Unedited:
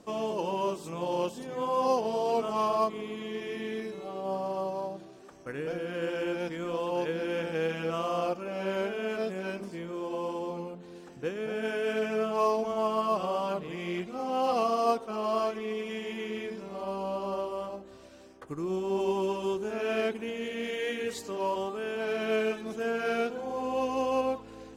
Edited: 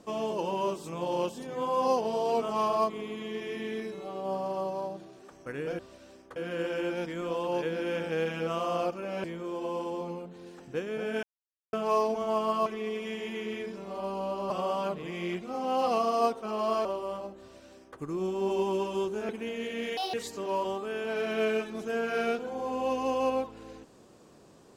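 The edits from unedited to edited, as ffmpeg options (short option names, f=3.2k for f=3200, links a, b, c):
-filter_complex "[0:a]asplit=12[a][b][c][d][e][f][g][h][i][j][k][l];[a]atrim=end=5.792[m];[b]atrim=start=17.898:end=18.472[n];[c]atrim=start=5.788:end=8.672[o];[d]atrim=start=9.728:end=11.72,asetpts=PTS-STARTPTS,afade=t=out:st=1.988:d=0.004:c=hsin[p];[e]atrim=start=11.72:end=12.22,asetpts=PTS-STARTPTS,volume=0[q];[f]atrim=start=12.22:end=13.152,asetpts=PTS-STARTPTS,afade=t=in:d=0.004:c=hsin[r];[g]atrim=start=15.498:end=17.342[s];[h]atrim=start=13.148:end=15.502[t];[i]atrim=start=17.338:end=19.782[u];[j]atrim=start=20.098:end=20.784[v];[k]atrim=start=20.78:end=21.05,asetpts=PTS-STARTPTS,asetrate=71442,aresample=44100[w];[l]atrim=start=21.046[x];[m][n]acrossfade=d=0.004:c1=hsin:c2=hsin[y];[y][o]acrossfade=d=0.004:c1=hsin:c2=hsin[z];[p][q][r]concat=n=3:v=0:a=1[aa];[z][aa]acrossfade=d=0.004:c1=hsin:c2=hsin[ab];[ab][s]acrossfade=d=0.004:c1=hsin:c2=hsin[ac];[ac][t]acrossfade=d=0.004:c1=hsin:c2=hsin[ad];[ad][u]acrossfade=d=0.004:c1=hsin:c2=hsin[ae];[ae][v]acrossfade=d=0.004:c1=hsin:c2=hsin[af];[af][w]acrossfade=d=0.004:c1=hsin:c2=hsin[ag];[ag][x]acrossfade=d=0.004:c1=hsin:c2=hsin"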